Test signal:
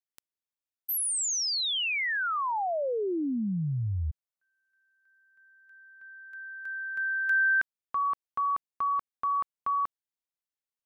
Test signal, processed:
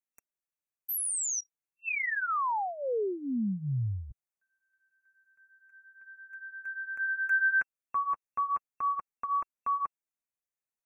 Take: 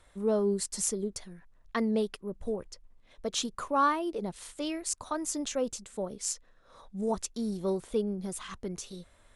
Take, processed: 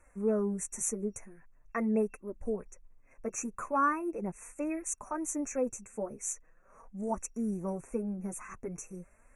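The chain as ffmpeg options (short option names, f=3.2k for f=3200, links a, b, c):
-af "afftfilt=real='re*(1-between(b*sr/4096,2700,5700))':imag='im*(1-between(b*sr/4096,2700,5700))':win_size=4096:overlap=0.75,flanger=delay=3:depth=6.6:regen=-10:speed=0.42:shape=triangular,volume=1dB"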